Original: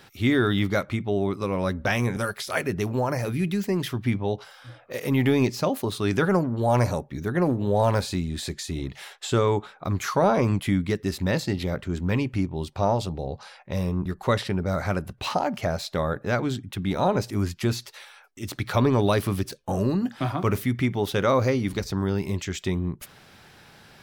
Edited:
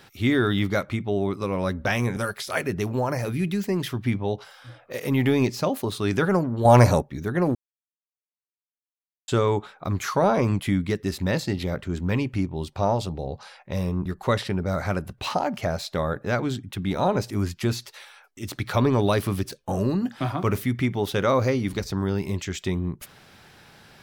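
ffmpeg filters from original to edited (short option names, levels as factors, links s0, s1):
-filter_complex "[0:a]asplit=5[s0][s1][s2][s3][s4];[s0]atrim=end=6.652[s5];[s1]atrim=start=6.648:end=7.022,asetpts=PTS-STARTPTS,volume=2.24[s6];[s2]atrim=start=7.018:end=7.55,asetpts=PTS-STARTPTS,afade=t=out:st=0.528:d=0.004:c=hsin[s7];[s3]atrim=start=7.55:end=9.28,asetpts=PTS-STARTPTS,volume=0[s8];[s4]atrim=start=9.28,asetpts=PTS-STARTPTS,afade=t=in:d=0.004:c=hsin[s9];[s5][s6]acrossfade=d=0.004:c1=hsin:c2=hsin[s10];[s7][s8][s9]concat=n=3:v=0:a=1[s11];[s10][s11]acrossfade=d=0.004:c1=hsin:c2=hsin"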